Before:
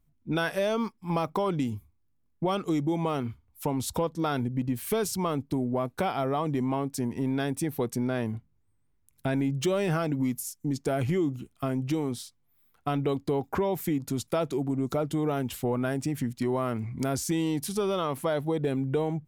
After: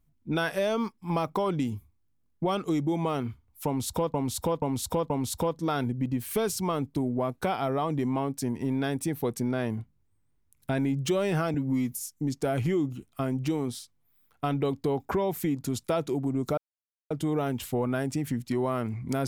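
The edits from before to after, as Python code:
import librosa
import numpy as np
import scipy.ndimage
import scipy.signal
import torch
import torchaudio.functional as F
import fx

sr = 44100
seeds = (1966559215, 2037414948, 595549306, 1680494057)

y = fx.edit(x, sr, fx.repeat(start_s=3.66, length_s=0.48, count=4),
    fx.stretch_span(start_s=10.1, length_s=0.25, factor=1.5),
    fx.insert_silence(at_s=15.01, length_s=0.53), tone=tone)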